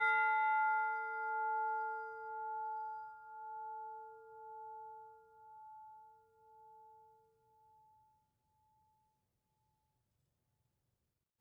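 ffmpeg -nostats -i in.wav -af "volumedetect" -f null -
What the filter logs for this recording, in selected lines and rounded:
mean_volume: -42.7 dB
max_volume: -23.4 dB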